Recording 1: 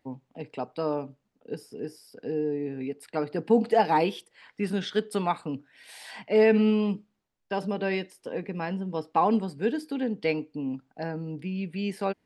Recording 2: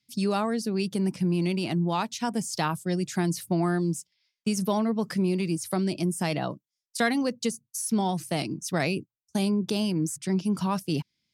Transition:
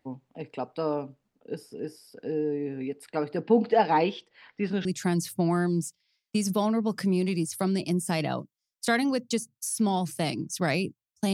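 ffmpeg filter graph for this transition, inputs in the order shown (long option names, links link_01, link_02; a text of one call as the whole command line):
ffmpeg -i cue0.wav -i cue1.wav -filter_complex "[0:a]asettb=1/sr,asplit=3[link_01][link_02][link_03];[link_01]atrim=end=3.414[link_04];[link_02]atrim=start=3.41:end=4.85,asetpts=PTS-STARTPTS,afade=type=in:duration=0.004:curve=qsin,afade=type=out:start_time=1.436:duration=0.004:curve=qsin,lowpass=frequency=5400:width=0.5412,lowpass=frequency=5400:width=1.3066[link_05];[link_03]atrim=start=4.846[link_06];[link_04][link_05]acrossfade=duration=0.004:curve1=hsin:curve2=qsin[link_07];[link_07][link_06]acrossfade=duration=0.004:curve1=qsin:curve2=hsin,apad=whole_dur=11.33,atrim=end=11.33,atrim=end=4.852[link_08];[1:a]atrim=start=2.968:end=9.45[link_09];[link_08][link_09]acrossfade=duration=0.004:curve1=hsin:curve2=hsin" out.wav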